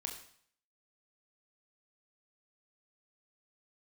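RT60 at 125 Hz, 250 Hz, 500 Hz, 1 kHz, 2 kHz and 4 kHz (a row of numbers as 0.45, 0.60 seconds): 0.60, 0.60, 0.55, 0.60, 0.60, 0.60 seconds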